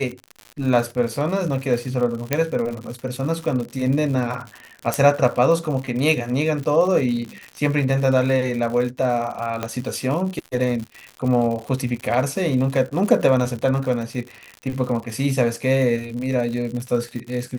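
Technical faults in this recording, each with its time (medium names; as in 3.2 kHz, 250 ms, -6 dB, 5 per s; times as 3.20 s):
crackle 110 per s -28 dBFS
2.33 s: pop -3 dBFS
4.94 s: pop
9.63 s: pop -10 dBFS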